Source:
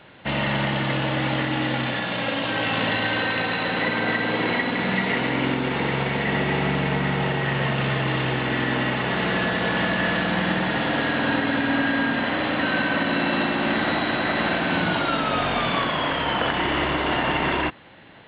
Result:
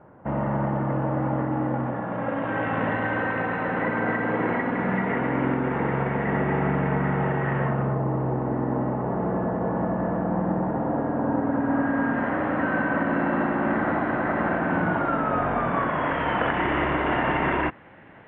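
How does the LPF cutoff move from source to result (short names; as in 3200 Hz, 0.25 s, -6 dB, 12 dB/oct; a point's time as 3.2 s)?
LPF 24 dB/oct
1.99 s 1200 Hz
2.56 s 1700 Hz
7.58 s 1700 Hz
8.01 s 1000 Hz
11.31 s 1000 Hz
12.23 s 1600 Hz
15.7 s 1600 Hz
16.25 s 2200 Hz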